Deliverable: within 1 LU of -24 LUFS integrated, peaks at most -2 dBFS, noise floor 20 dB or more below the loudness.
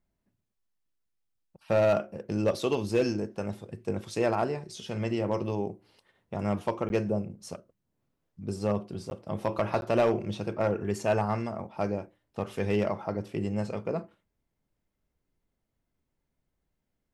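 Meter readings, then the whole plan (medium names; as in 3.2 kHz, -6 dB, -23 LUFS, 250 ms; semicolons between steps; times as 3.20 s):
clipped samples 0.2%; clipping level -17.0 dBFS; dropouts 3; longest dropout 11 ms; loudness -30.5 LUFS; peak level -17.0 dBFS; loudness target -24.0 LUFS
-> clip repair -17 dBFS; interpolate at 6.89/9.10/9.81 s, 11 ms; trim +6.5 dB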